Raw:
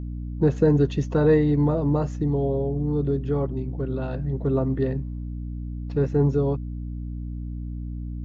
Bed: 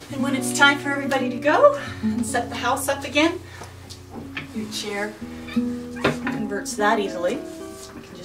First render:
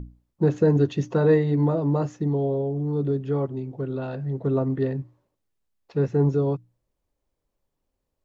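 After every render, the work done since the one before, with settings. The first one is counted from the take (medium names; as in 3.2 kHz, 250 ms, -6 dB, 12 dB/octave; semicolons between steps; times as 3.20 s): hum notches 60/120/180/240/300 Hz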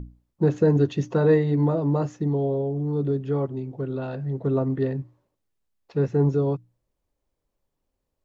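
no audible change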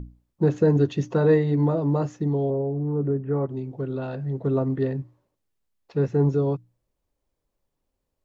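2.50–3.49 s: steep low-pass 2.1 kHz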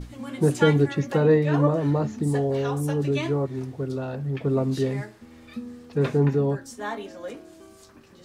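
add bed -12.5 dB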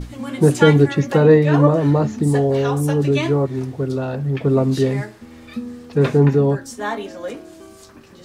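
trim +7 dB; peak limiter -1 dBFS, peak gain reduction 1 dB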